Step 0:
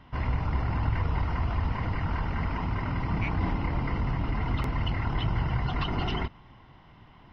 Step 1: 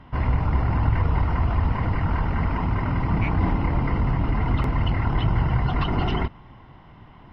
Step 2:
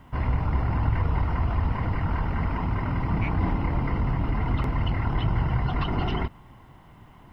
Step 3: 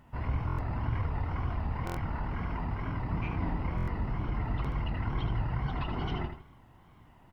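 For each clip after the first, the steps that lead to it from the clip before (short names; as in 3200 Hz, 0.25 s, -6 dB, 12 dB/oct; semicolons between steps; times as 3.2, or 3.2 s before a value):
high shelf 2800 Hz -9.5 dB; gain +6.5 dB
requantised 12-bit, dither triangular; gain -3 dB
feedback echo 78 ms, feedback 32%, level -7.5 dB; wow and flutter 99 cents; stuck buffer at 0.47/1.85/3.76, samples 1024, times 4; gain -8 dB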